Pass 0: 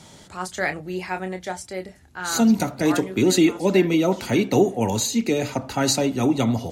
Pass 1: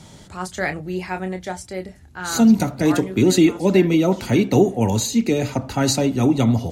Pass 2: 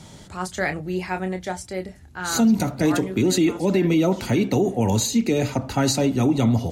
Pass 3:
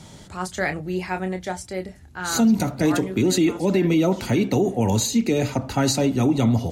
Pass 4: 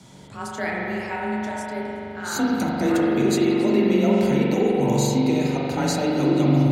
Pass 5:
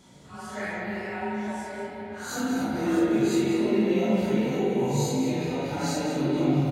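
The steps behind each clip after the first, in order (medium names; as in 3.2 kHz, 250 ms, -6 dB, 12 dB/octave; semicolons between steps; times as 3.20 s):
bass shelf 210 Hz +8.5 dB
peak limiter -11 dBFS, peak gain reduction 7.5 dB
no audible change
frequency shift +27 Hz; spring tank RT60 3.2 s, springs 42 ms, chirp 50 ms, DRR -3.5 dB; trim -5 dB
phase randomisation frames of 200 ms; on a send: delay 188 ms -9 dB; on the sum: trim -5.5 dB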